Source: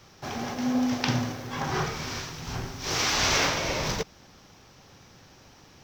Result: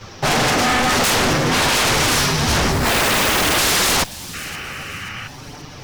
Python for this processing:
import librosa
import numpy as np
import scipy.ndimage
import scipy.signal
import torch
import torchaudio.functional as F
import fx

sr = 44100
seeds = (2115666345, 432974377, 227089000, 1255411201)

p1 = fx.high_shelf(x, sr, hz=9900.0, db=-12.0)
p2 = fx.sample_hold(p1, sr, seeds[0], rate_hz=3100.0, jitter_pct=0, at=(2.71, 3.58))
p3 = fx.fuzz(p2, sr, gain_db=31.0, gate_db=-40.0)
p4 = p2 + (p3 * librosa.db_to_amplitude(-10.0))
p5 = fx.chorus_voices(p4, sr, voices=2, hz=0.54, base_ms=10, depth_ms=3.4, mix_pct=60)
p6 = fx.fold_sine(p5, sr, drive_db=17, ceiling_db=-12.5)
p7 = fx.spec_paint(p6, sr, seeds[1], shape='noise', start_s=4.33, length_s=0.95, low_hz=1100.0, high_hz=3100.0, level_db=-31.0)
p8 = p7 + fx.echo_wet_highpass(p7, sr, ms=531, feedback_pct=41, hz=3500.0, wet_db=-15, dry=0)
y = p8 * librosa.db_to_amplitude(-1.0)